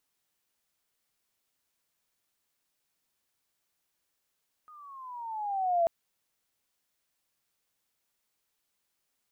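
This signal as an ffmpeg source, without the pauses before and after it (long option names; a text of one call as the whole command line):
ffmpeg -f lavfi -i "aevalsrc='pow(10,(-21+28*(t/1.19-1))/20)*sin(2*PI*1250*1.19/(-11*log(2)/12)*(exp(-11*log(2)/12*t/1.19)-1))':duration=1.19:sample_rate=44100" out.wav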